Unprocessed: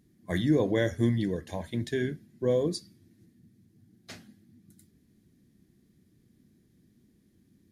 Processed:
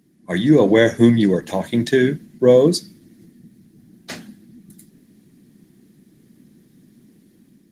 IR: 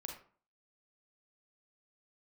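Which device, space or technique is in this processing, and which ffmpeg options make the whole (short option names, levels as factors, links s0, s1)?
video call: -af "highpass=f=140:w=0.5412,highpass=f=140:w=1.3066,dynaudnorm=f=220:g=5:m=2.24,volume=2.37" -ar 48000 -c:a libopus -b:a 20k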